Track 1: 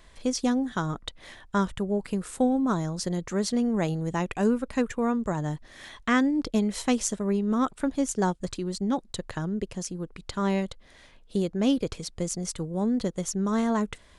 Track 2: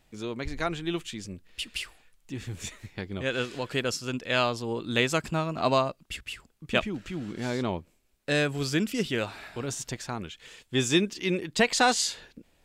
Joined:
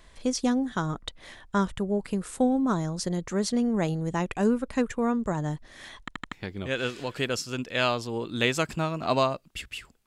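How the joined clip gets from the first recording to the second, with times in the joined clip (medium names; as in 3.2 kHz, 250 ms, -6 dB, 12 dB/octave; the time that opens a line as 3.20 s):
track 1
6.00 s: stutter in place 0.08 s, 4 plays
6.32 s: go over to track 2 from 2.87 s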